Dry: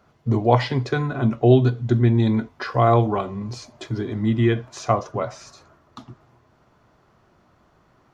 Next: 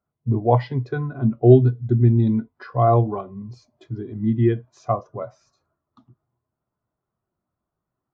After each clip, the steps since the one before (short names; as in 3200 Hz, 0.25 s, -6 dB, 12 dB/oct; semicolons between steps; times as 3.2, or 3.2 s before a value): spectral expander 1.5:1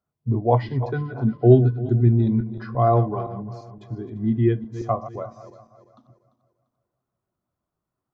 regenerating reverse delay 0.172 s, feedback 58%, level -13 dB; gain -1.5 dB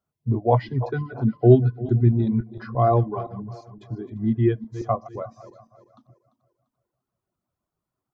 reverb removal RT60 0.53 s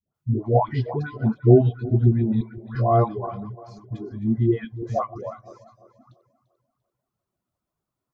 dispersion highs, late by 0.147 s, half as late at 760 Hz